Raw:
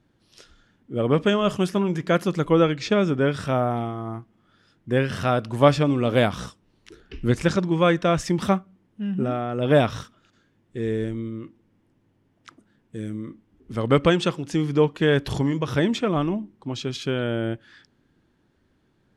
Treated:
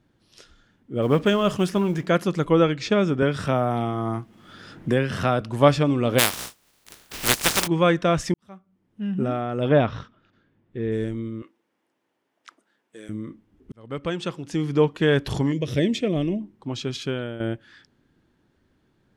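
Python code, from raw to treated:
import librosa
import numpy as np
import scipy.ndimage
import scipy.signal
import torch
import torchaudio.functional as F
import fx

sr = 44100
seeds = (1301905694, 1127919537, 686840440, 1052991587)

y = fx.law_mismatch(x, sr, coded='mu', at=(1.01, 2.05), fade=0.02)
y = fx.band_squash(y, sr, depth_pct=70, at=(3.22, 5.41))
y = fx.spec_flatten(y, sr, power=0.2, at=(6.18, 7.66), fade=0.02)
y = fx.air_absorb(y, sr, metres=240.0, at=(9.68, 10.91), fade=0.02)
y = fx.highpass(y, sr, hz=530.0, slope=12, at=(11.42, 13.09))
y = fx.band_shelf(y, sr, hz=1100.0, db=-15.5, octaves=1.2, at=(15.52, 16.41))
y = fx.edit(y, sr, fx.fade_in_span(start_s=8.34, length_s=0.7, curve='qua'),
    fx.fade_in_span(start_s=13.72, length_s=1.09),
    fx.fade_out_to(start_s=17.0, length_s=0.4, floor_db=-11.5), tone=tone)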